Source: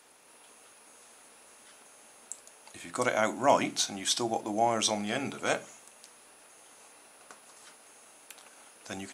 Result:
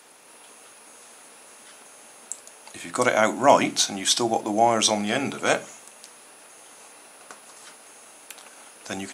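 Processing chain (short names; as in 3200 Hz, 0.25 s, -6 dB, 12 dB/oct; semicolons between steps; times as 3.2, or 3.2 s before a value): HPF 100 Hz; gain +7.5 dB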